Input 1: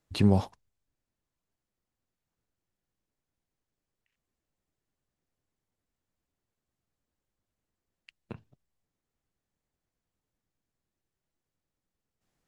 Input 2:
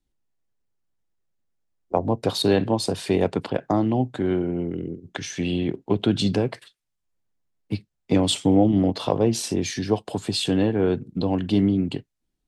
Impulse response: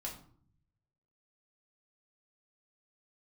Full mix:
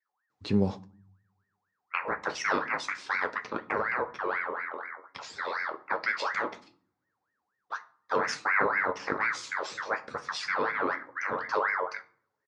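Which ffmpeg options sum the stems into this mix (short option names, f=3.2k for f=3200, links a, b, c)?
-filter_complex "[0:a]adelay=300,volume=0dB,asplit=2[a][b];[b]volume=-14dB[c];[1:a]aeval=exprs='val(0)*sin(2*PI*1300*n/s+1300*0.45/4.1*sin(2*PI*4.1*n/s))':c=same,volume=-4dB,asplit=2[d][e];[e]volume=-6.5dB[f];[2:a]atrim=start_sample=2205[g];[c][f]amix=inputs=2:normalize=0[h];[h][g]afir=irnorm=-1:irlink=0[i];[a][d][i]amix=inputs=3:normalize=0,flanger=delay=9:depth=3.7:regen=-51:speed=0.25:shape=sinusoidal,highpass=130,equalizer=f=450:t=q:w=4:g=5,equalizer=f=710:t=q:w=4:g=-5,equalizer=f=3k:t=q:w=4:g=-5,lowpass=f=6.5k:w=0.5412,lowpass=f=6.5k:w=1.3066"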